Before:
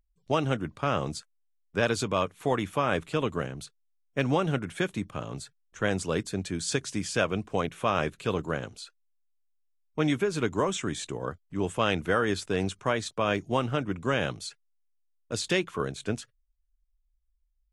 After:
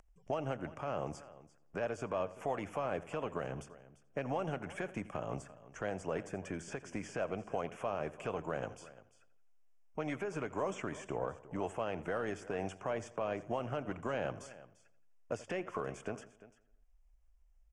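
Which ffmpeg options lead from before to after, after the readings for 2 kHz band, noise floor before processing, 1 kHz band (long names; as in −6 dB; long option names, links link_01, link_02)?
−12.0 dB, −73 dBFS, −9.0 dB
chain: -filter_complex "[0:a]asuperstop=centerf=4000:order=4:qfactor=1.8,acrossover=split=600|2600[link_01][link_02][link_03];[link_01]acompressor=threshold=-34dB:ratio=4[link_04];[link_02]acompressor=threshold=-36dB:ratio=4[link_05];[link_03]acompressor=threshold=-48dB:ratio=4[link_06];[link_04][link_05][link_06]amix=inputs=3:normalize=0,alimiter=level_in=3dB:limit=-24dB:level=0:latency=1:release=171,volume=-3dB,asplit=2[link_07][link_08];[link_08]aecho=0:1:345:0.133[link_09];[link_07][link_09]amix=inputs=2:normalize=0,aeval=exprs='0.0501*(cos(1*acos(clip(val(0)/0.0501,-1,1)))-cos(1*PI/2))+0.002*(cos(4*acos(clip(val(0)/0.0501,-1,1)))-cos(4*PI/2))':channel_layout=same,lowpass=7000,equalizer=frequency=670:width=1.4:gain=10,asplit=2[link_10][link_11];[link_11]adelay=85,lowpass=frequency=3700:poles=1,volume=-17dB,asplit=2[link_12][link_13];[link_13]adelay=85,lowpass=frequency=3700:poles=1,volume=0.47,asplit=2[link_14][link_15];[link_15]adelay=85,lowpass=frequency=3700:poles=1,volume=0.47,asplit=2[link_16][link_17];[link_17]adelay=85,lowpass=frequency=3700:poles=1,volume=0.47[link_18];[link_12][link_14][link_16][link_18]amix=inputs=4:normalize=0[link_19];[link_10][link_19]amix=inputs=2:normalize=0,acompressor=mode=upward:threshold=-52dB:ratio=2.5,volume=-3dB"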